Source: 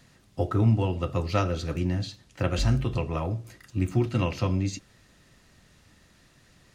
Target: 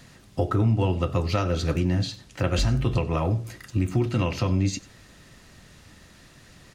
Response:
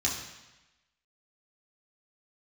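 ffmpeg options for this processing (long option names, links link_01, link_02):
-af "alimiter=limit=-21dB:level=0:latency=1:release=272,aecho=1:1:95:0.0944,volume=7.5dB"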